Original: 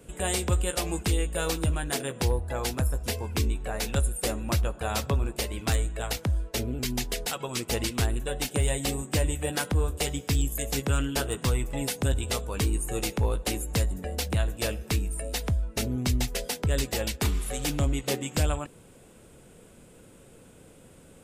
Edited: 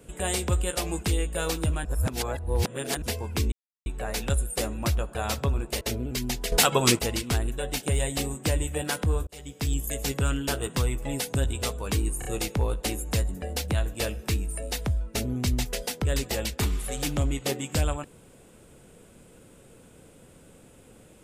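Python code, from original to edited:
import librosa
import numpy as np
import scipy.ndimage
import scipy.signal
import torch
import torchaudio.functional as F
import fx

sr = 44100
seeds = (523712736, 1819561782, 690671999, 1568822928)

y = fx.edit(x, sr, fx.reverse_span(start_s=1.85, length_s=1.17),
    fx.insert_silence(at_s=3.52, length_s=0.34),
    fx.cut(start_s=5.47, length_s=1.02),
    fx.clip_gain(start_s=7.2, length_s=0.47, db=11.5),
    fx.fade_in_span(start_s=9.95, length_s=0.53),
    fx.stutter(start_s=12.87, slice_s=0.03, count=3), tone=tone)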